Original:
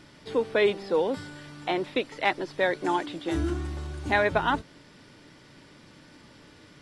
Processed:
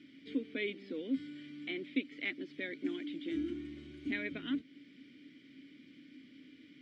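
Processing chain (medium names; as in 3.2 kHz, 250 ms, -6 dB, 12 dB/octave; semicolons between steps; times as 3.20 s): in parallel at -1.5 dB: compression, threshold -35 dBFS, peak gain reduction 16 dB; on the sum: vowel filter i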